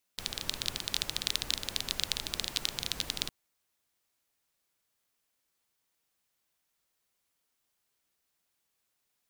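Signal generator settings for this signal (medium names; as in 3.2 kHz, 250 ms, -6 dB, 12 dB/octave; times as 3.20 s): rain from filtered ticks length 3.11 s, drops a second 18, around 3.8 kHz, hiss -7.5 dB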